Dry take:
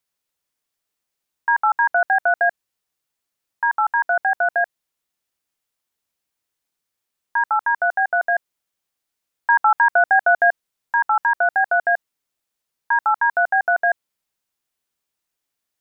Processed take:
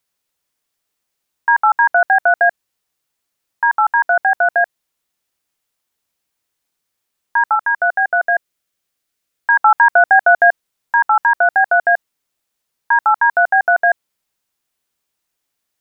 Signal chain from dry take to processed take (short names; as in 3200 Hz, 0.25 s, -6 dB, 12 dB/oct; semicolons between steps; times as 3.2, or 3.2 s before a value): 7.55–9.59 bell 900 Hz -6 dB 0.48 oct; gain +5 dB